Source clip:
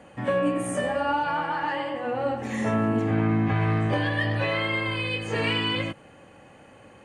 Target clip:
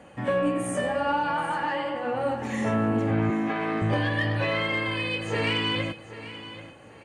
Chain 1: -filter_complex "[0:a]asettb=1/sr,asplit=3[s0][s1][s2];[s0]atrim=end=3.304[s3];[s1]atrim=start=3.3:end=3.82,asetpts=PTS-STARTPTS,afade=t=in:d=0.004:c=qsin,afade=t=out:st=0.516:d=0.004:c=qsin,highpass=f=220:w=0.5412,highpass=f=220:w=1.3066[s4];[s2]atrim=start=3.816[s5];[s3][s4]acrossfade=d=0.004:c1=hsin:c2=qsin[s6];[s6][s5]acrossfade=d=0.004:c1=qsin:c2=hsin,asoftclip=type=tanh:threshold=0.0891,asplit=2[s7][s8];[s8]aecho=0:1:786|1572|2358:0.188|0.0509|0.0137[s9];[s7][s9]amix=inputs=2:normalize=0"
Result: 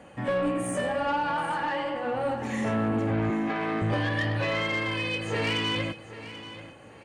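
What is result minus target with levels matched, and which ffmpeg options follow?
saturation: distortion +11 dB
-filter_complex "[0:a]asettb=1/sr,asplit=3[s0][s1][s2];[s0]atrim=end=3.304[s3];[s1]atrim=start=3.3:end=3.82,asetpts=PTS-STARTPTS,afade=t=in:d=0.004:c=qsin,afade=t=out:st=0.516:d=0.004:c=qsin,highpass=f=220:w=0.5412,highpass=f=220:w=1.3066[s4];[s2]atrim=start=3.816[s5];[s3][s4]acrossfade=d=0.004:c1=hsin:c2=qsin[s6];[s6][s5]acrossfade=d=0.004:c1=qsin:c2=hsin,asoftclip=type=tanh:threshold=0.211,asplit=2[s7][s8];[s8]aecho=0:1:786|1572|2358:0.188|0.0509|0.0137[s9];[s7][s9]amix=inputs=2:normalize=0"

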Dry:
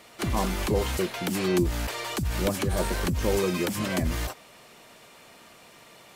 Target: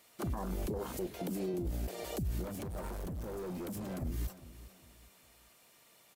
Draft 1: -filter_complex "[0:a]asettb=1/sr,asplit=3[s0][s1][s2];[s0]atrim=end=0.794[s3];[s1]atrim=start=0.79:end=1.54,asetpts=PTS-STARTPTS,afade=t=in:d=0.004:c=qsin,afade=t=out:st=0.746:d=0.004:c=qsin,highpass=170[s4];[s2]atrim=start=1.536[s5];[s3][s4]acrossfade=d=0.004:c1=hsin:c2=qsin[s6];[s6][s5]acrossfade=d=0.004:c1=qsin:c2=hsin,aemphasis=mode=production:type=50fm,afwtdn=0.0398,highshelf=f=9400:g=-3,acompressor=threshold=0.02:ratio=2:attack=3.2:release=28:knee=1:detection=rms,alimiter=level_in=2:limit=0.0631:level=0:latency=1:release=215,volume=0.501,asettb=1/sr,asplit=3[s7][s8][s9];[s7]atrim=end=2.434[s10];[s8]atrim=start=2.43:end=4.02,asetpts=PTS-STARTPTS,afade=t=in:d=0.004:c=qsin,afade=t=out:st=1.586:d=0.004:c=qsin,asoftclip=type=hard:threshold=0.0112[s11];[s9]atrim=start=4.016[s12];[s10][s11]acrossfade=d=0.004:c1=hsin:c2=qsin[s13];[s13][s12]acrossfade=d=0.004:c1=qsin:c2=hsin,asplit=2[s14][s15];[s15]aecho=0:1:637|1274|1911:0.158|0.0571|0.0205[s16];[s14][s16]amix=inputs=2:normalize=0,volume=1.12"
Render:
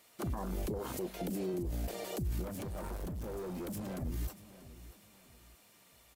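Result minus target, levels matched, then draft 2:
echo 232 ms late; compression: peak gain reduction +4 dB
-filter_complex "[0:a]asettb=1/sr,asplit=3[s0][s1][s2];[s0]atrim=end=0.794[s3];[s1]atrim=start=0.79:end=1.54,asetpts=PTS-STARTPTS,afade=t=in:d=0.004:c=qsin,afade=t=out:st=0.746:d=0.004:c=qsin,highpass=170[s4];[s2]atrim=start=1.536[s5];[s3][s4]acrossfade=d=0.004:c1=hsin:c2=qsin[s6];[s6][s5]acrossfade=d=0.004:c1=qsin:c2=hsin,aemphasis=mode=production:type=50fm,afwtdn=0.0398,highshelf=f=9400:g=-3,acompressor=threshold=0.0531:ratio=2:attack=3.2:release=28:knee=1:detection=rms,alimiter=level_in=2:limit=0.0631:level=0:latency=1:release=215,volume=0.501,asettb=1/sr,asplit=3[s7][s8][s9];[s7]atrim=end=2.434[s10];[s8]atrim=start=2.43:end=4.02,asetpts=PTS-STARTPTS,afade=t=in:d=0.004:c=qsin,afade=t=out:st=1.586:d=0.004:c=qsin,asoftclip=type=hard:threshold=0.0112[s11];[s9]atrim=start=4.016[s12];[s10][s11]acrossfade=d=0.004:c1=hsin:c2=qsin[s13];[s13][s12]acrossfade=d=0.004:c1=qsin:c2=hsin,asplit=2[s14][s15];[s15]aecho=0:1:405|810|1215:0.158|0.0571|0.0205[s16];[s14][s16]amix=inputs=2:normalize=0,volume=1.12"

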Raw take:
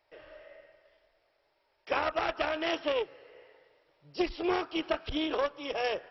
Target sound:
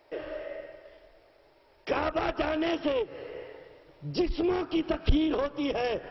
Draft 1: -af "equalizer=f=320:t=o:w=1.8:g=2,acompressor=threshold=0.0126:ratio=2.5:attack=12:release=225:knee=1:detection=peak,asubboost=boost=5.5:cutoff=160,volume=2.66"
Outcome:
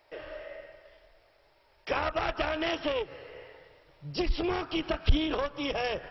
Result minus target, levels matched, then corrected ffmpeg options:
250 Hz band -3.5 dB
-af "equalizer=f=320:t=o:w=1.8:g=11.5,acompressor=threshold=0.0126:ratio=2.5:attack=12:release=225:knee=1:detection=peak,asubboost=boost=5.5:cutoff=160,volume=2.66"

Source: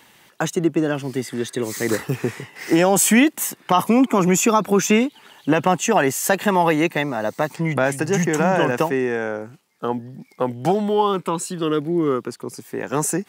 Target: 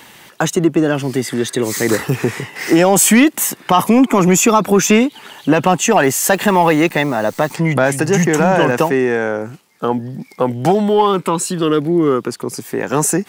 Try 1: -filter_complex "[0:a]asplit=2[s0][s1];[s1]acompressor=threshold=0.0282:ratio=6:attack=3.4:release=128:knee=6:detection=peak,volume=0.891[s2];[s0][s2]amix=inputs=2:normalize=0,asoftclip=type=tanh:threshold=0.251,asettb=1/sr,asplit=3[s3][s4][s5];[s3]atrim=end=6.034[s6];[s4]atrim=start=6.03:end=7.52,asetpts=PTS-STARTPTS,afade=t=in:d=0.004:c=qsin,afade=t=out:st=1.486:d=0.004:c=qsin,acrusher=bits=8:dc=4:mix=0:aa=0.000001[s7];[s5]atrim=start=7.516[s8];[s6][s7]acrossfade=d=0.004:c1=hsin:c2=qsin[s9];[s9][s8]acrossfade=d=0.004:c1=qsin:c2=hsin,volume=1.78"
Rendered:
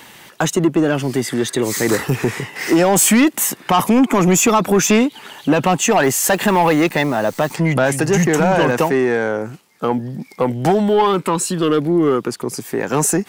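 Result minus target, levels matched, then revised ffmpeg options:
saturation: distortion +9 dB
-filter_complex "[0:a]asplit=2[s0][s1];[s1]acompressor=threshold=0.0282:ratio=6:attack=3.4:release=128:knee=6:detection=peak,volume=0.891[s2];[s0][s2]amix=inputs=2:normalize=0,asoftclip=type=tanh:threshold=0.531,asettb=1/sr,asplit=3[s3][s4][s5];[s3]atrim=end=6.034[s6];[s4]atrim=start=6.03:end=7.52,asetpts=PTS-STARTPTS,afade=t=in:d=0.004:c=qsin,afade=t=out:st=1.486:d=0.004:c=qsin,acrusher=bits=8:dc=4:mix=0:aa=0.000001[s7];[s5]atrim=start=7.516[s8];[s6][s7]acrossfade=d=0.004:c1=hsin:c2=qsin[s9];[s9][s8]acrossfade=d=0.004:c1=qsin:c2=hsin,volume=1.78"

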